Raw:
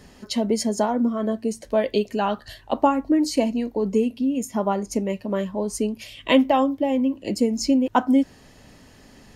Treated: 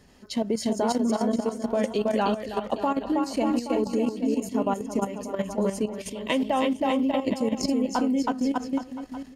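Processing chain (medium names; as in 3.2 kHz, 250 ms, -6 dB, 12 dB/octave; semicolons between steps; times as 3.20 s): bouncing-ball echo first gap 320 ms, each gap 0.85×, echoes 5; level held to a coarse grid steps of 11 dB; trim -1 dB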